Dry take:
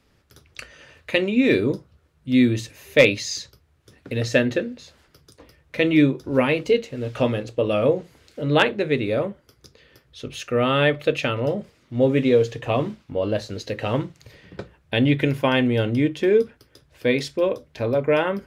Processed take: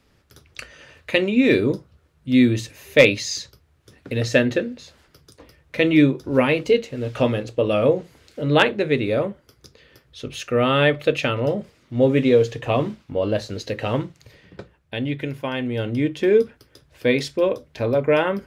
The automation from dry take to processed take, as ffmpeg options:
ffmpeg -i in.wav -af "volume=10dB,afade=type=out:start_time=13.68:duration=1.32:silence=0.375837,afade=type=in:start_time=15.58:duration=0.78:silence=0.375837" out.wav

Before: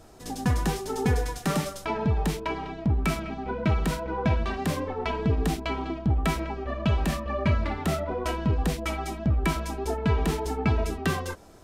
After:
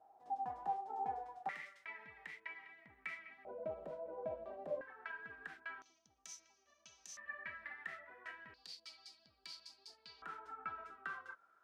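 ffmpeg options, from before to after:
ffmpeg -i in.wav -af "asetnsamples=nb_out_samples=441:pad=0,asendcmd='1.49 bandpass f 2000;3.45 bandpass f 590;4.81 bandpass f 1600;5.82 bandpass f 6100;7.17 bandpass f 1800;8.54 bandpass f 4600;10.22 bandpass f 1400',bandpass=frequency=790:width_type=q:width=13:csg=0" out.wav

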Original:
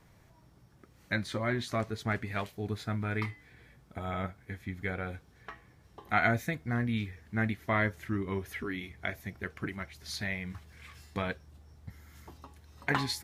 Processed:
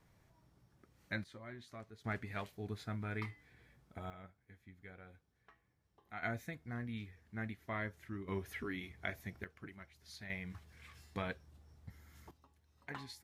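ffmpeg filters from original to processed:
ffmpeg -i in.wav -af "asetnsamples=nb_out_samples=441:pad=0,asendcmd='1.24 volume volume -19dB;2.04 volume volume -8dB;4.1 volume volume -19.5dB;6.23 volume volume -12dB;8.28 volume volume -5.5dB;9.44 volume volume -14.5dB;10.3 volume volume -6.5dB;12.31 volume volume -17dB',volume=-8.5dB" out.wav

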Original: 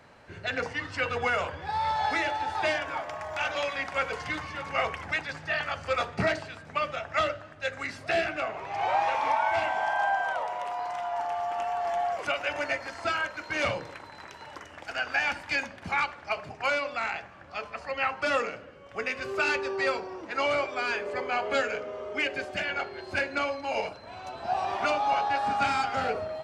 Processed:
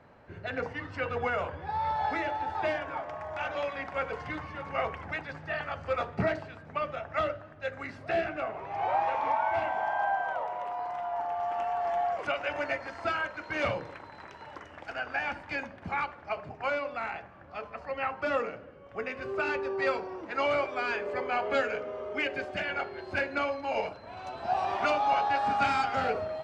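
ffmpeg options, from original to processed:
ffmpeg -i in.wav -af "asetnsamples=nb_out_samples=441:pad=0,asendcmd='11.4 lowpass f 1900;14.94 lowpass f 1100;19.82 lowpass f 2300;24.17 lowpass f 4200',lowpass=frequency=1100:poles=1" out.wav

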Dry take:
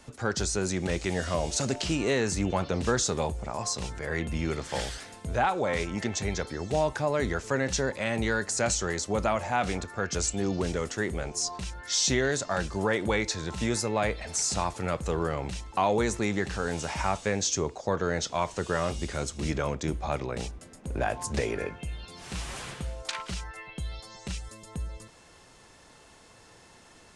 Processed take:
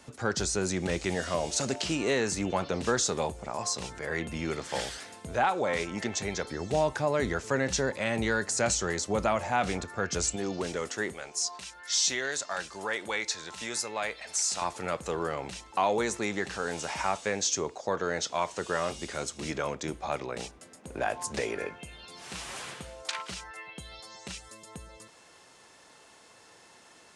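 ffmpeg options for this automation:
ffmpeg -i in.wav -af "asetnsamples=nb_out_samples=441:pad=0,asendcmd='1.15 highpass f 210;6.47 highpass f 90;10.36 highpass f 360;11.13 highpass f 1200;14.62 highpass f 350',highpass=frequency=98:poles=1" out.wav

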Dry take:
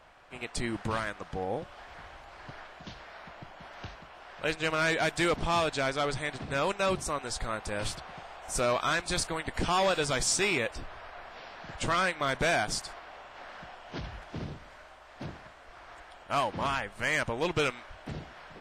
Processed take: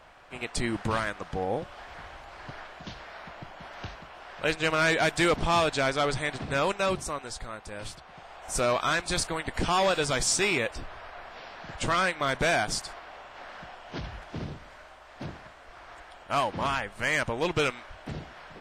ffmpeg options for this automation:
ffmpeg -i in.wav -af "volume=11dB,afade=type=out:start_time=6.5:duration=1.01:silence=0.354813,afade=type=in:start_time=8.06:duration=0.48:silence=0.421697" out.wav

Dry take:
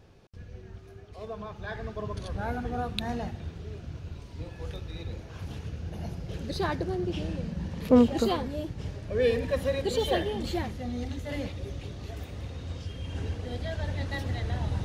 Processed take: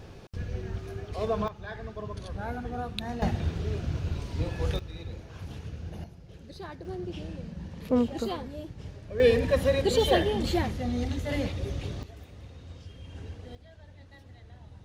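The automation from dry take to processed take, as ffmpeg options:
ffmpeg -i in.wav -af "asetnsamples=nb_out_samples=441:pad=0,asendcmd='1.48 volume volume -2.5dB;3.22 volume volume 8.5dB;4.79 volume volume -2dB;6.04 volume volume -12dB;6.85 volume volume -5.5dB;9.2 volume volume 4dB;12.03 volume volume -8dB;13.55 volume volume -19dB',volume=10dB" out.wav

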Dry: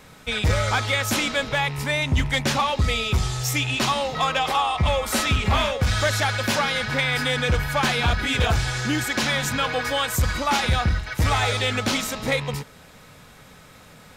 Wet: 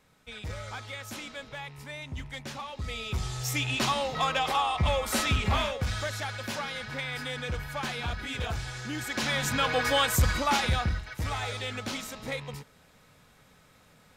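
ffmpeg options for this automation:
ffmpeg -i in.wav -af "volume=6.5dB,afade=type=in:start_time=2.72:duration=1.01:silence=0.251189,afade=type=out:start_time=5.4:duration=0.7:silence=0.446684,afade=type=in:start_time=8.91:duration=1.06:silence=0.266073,afade=type=out:start_time=9.97:duration=1.22:silence=0.281838" out.wav

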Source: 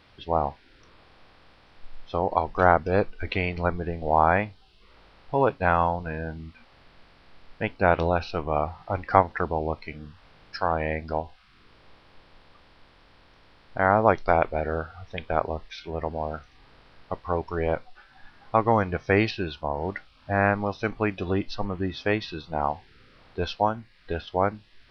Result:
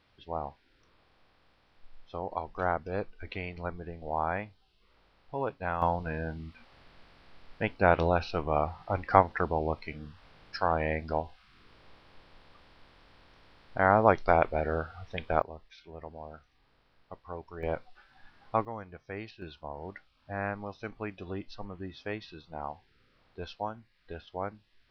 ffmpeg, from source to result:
ffmpeg -i in.wav -af "asetnsamples=nb_out_samples=441:pad=0,asendcmd='5.82 volume volume -2.5dB;15.42 volume volume -14dB;17.63 volume volume -6.5dB;18.65 volume volume -19dB;19.42 volume volume -12dB',volume=-11dB" out.wav

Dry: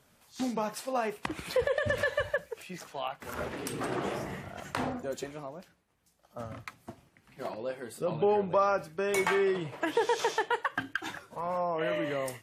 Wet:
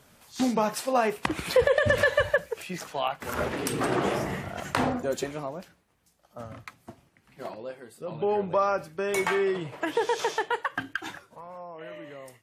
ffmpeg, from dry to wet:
ffmpeg -i in.wav -af "volume=15.5dB,afade=type=out:start_time=5.55:duration=0.83:silence=0.446684,afade=type=out:start_time=7.46:duration=0.52:silence=0.446684,afade=type=in:start_time=7.98:duration=0.44:silence=0.375837,afade=type=out:start_time=11.03:duration=0.43:silence=0.251189" out.wav

